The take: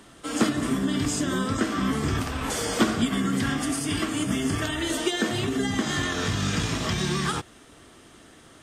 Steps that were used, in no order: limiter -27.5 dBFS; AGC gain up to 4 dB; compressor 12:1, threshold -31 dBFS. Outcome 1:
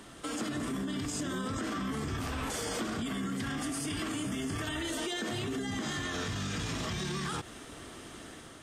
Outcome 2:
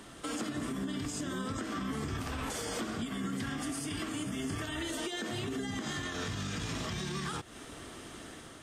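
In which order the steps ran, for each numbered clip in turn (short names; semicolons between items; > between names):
limiter > AGC > compressor; AGC > compressor > limiter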